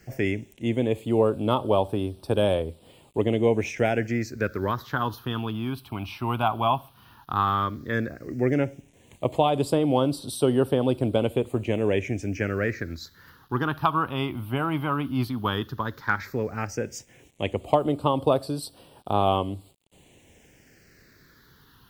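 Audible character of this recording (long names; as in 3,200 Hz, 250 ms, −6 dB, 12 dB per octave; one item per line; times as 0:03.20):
a quantiser's noise floor 10 bits, dither none
phaser sweep stages 6, 0.12 Hz, lowest notch 480–1,900 Hz
MP3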